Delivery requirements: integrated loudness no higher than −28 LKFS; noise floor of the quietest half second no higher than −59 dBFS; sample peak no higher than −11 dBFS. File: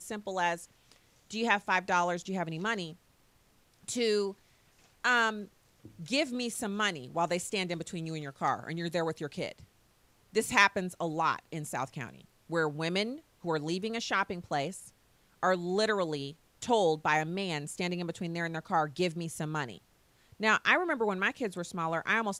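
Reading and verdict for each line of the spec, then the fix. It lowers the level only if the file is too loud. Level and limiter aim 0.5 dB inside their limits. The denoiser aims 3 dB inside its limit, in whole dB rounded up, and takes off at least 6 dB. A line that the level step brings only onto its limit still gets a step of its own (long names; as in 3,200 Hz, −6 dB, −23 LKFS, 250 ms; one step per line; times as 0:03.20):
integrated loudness −31.5 LKFS: in spec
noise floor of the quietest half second −66 dBFS: in spec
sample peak −9.5 dBFS: out of spec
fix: brickwall limiter −11.5 dBFS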